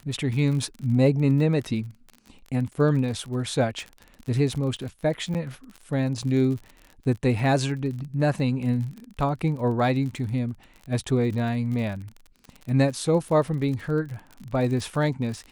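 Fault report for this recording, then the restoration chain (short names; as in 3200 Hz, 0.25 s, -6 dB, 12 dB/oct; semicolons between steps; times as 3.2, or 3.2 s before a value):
crackle 41/s -33 dBFS
5.34–5.35 gap 8.2 ms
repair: de-click; interpolate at 5.34, 8.2 ms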